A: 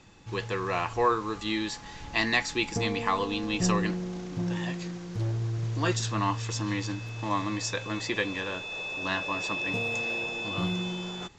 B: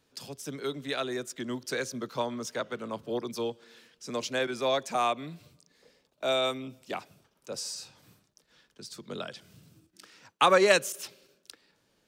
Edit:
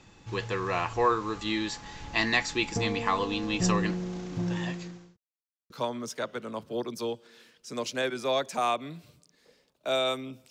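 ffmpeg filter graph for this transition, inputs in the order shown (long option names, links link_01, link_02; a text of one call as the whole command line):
ffmpeg -i cue0.wav -i cue1.wav -filter_complex "[0:a]apad=whole_dur=10.5,atrim=end=10.5,asplit=2[link_01][link_02];[link_01]atrim=end=5.17,asetpts=PTS-STARTPTS,afade=type=out:start_time=4.65:duration=0.52[link_03];[link_02]atrim=start=5.17:end=5.7,asetpts=PTS-STARTPTS,volume=0[link_04];[1:a]atrim=start=2.07:end=6.87,asetpts=PTS-STARTPTS,afade=type=in:duration=0.004:curve=hsin[link_05];[link_03][link_04][link_05]concat=n=3:v=0:a=1" out.wav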